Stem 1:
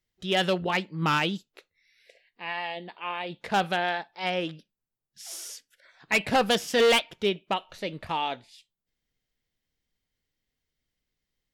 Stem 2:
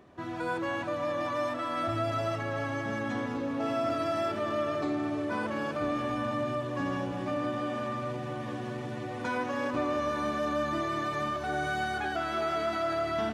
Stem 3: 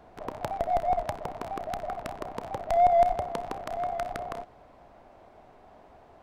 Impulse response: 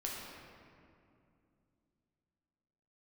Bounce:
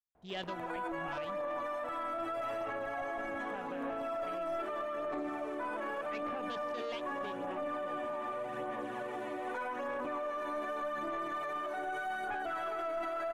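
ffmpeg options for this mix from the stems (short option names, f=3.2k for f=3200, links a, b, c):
-filter_complex "[0:a]afwtdn=0.0224,volume=-15dB[a];[1:a]highpass=460,aphaser=in_gain=1:out_gain=1:delay=3.2:decay=0.4:speed=0.83:type=sinusoidal,aeval=exprs='0.133*(cos(1*acos(clip(val(0)/0.133,-1,1)))-cos(1*PI/2))+0.0075*(cos(4*acos(clip(val(0)/0.133,-1,1)))-cos(4*PI/2))+0.0119*(cos(5*acos(clip(val(0)/0.133,-1,1)))-cos(5*PI/2))':c=same,adelay=300,volume=1.5dB[b];[2:a]adelay=150,volume=-14.5dB[c];[b][c]amix=inputs=2:normalize=0,equalizer=f=4.9k:t=o:w=1.3:g=-15,alimiter=level_in=0.5dB:limit=-24dB:level=0:latency=1:release=19,volume=-0.5dB,volume=0dB[d];[a][d]amix=inputs=2:normalize=0,alimiter=level_in=6.5dB:limit=-24dB:level=0:latency=1:release=208,volume=-6.5dB"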